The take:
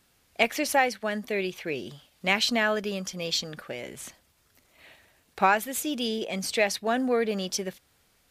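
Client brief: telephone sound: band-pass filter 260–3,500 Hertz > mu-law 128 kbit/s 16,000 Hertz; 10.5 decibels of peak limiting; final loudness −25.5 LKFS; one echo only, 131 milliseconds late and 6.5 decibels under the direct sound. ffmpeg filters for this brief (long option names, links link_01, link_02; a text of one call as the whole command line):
ffmpeg -i in.wav -af "alimiter=limit=-16.5dB:level=0:latency=1,highpass=260,lowpass=3500,aecho=1:1:131:0.473,volume=5dB" -ar 16000 -c:a pcm_mulaw out.wav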